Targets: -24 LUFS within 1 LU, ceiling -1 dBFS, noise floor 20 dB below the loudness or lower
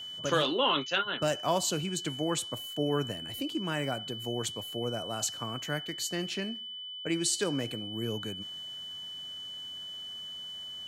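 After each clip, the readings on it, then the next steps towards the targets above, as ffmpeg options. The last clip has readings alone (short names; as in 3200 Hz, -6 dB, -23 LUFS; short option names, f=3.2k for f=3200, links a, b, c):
steady tone 3000 Hz; tone level -39 dBFS; loudness -32.5 LUFS; peak -15.0 dBFS; loudness target -24.0 LUFS
-> -af "bandreject=f=3k:w=30"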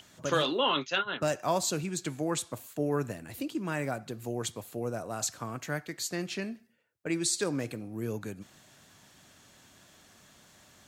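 steady tone none; loudness -32.5 LUFS; peak -16.0 dBFS; loudness target -24.0 LUFS
-> -af "volume=8.5dB"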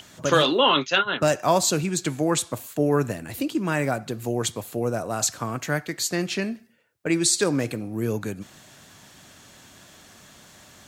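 loudness -24.0 LUFS; peak -7.5 dBFS; noise floor -51 dBFS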